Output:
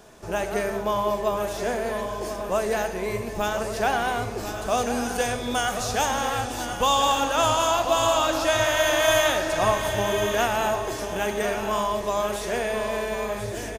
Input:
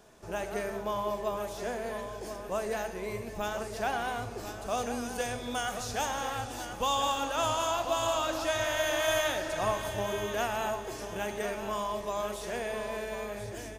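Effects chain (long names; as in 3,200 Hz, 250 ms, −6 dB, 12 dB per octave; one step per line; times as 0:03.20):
on a send: single-tap delay 1,137 ms −12 dB
on the sum: level +8 dB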